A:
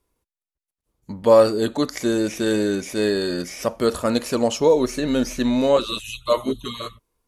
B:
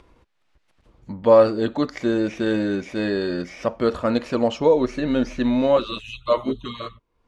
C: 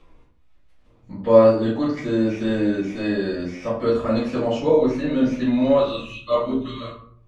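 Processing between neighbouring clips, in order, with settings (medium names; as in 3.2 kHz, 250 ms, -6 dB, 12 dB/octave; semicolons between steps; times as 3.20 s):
low-pass 3.1 kHz 12 dB/octave; band-stop 420 Hz, Q 13; upward compressor, threshold -38 dBFS
reverberation RT60 0.55 s, pre-delay 5 ms, DRR -10 dB; trim -14.5 dB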